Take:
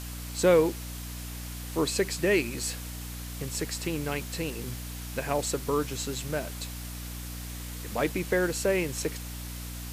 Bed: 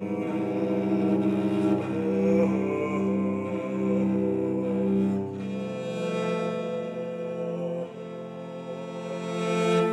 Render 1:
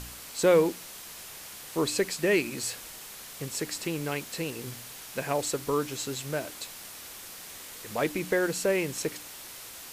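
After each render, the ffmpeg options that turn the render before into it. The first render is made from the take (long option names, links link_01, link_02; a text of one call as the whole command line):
ffmpeg -i in.wav -af "bandreject=frequency=60:width_type=h:width=4,bandreject=frequency=120:width_type=h:width=4,bandreject=frequency=180:width_type=h:width=4,bandreject=frequency=240:width_type=h:width=4,bandreject=frequency=300:width_type=h:width=4" out.wav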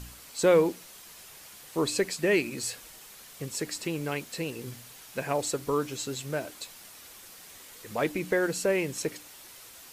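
ffmpeg -i in.wav -af "afftdn=noise_reduction=6:noise_floor=-44" out.wav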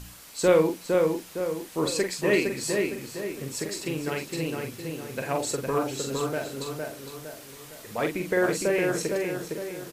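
ffmpeg -i in.wav -filter_complex "[0:a]asplit=2[link_01][link_02];[link_02]adelay=44,volume=-5.5dB[link_03];[link_01][link_03]amix=inputs=2:normalize=0,asplit=2[link_04][link_05];[link_05]adelay=460,lowpass=frequency=2300:poles=1,volume=-3dB,asplit=2[link_06][link_07];[link_07]adelay=460,lowpass=frequency=2300:poles=1,volume=0.47,asplit=2[link_08][link_09];[link_09]adelay=460,lowpass=frequency=2300:poles=1,volume=0.47,asplit=2[link_10][link_11];[link_11]adelay=460,lowpass=frequency=2300:poles=1,volume=0.47,asplit=2[link_12][link_13];[link_13]adelay=460,lowpass=frequency=2300:poles=1,volume=0.47,asplit=2[link_14][link_15];[link_15]adelay=460,lowpass=frequency=2300:poles=1,volume=0.47[link_16];[link_04][link_06][link_08][link_10][link_12][link_14][link_16]amix=inputs=7:normalize=0" out.wav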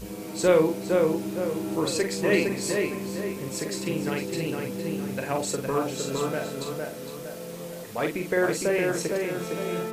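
ffmpeg -i in.wav -i bed.wav -filter_complex "[1:a]volume=-8dB[link_01];[0:a][link_01]amix=inputs=2:normalize=0" out.wav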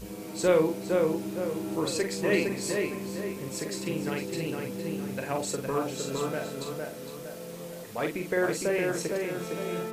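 ffmpeg -i in.wav -af "volume=-3dB" out.wav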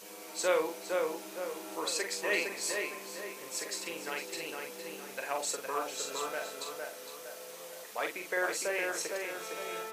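ffmpeg -i in.wav -af "highpass=690,equalizer=frequency=6100:width=8:gain=3" out.wav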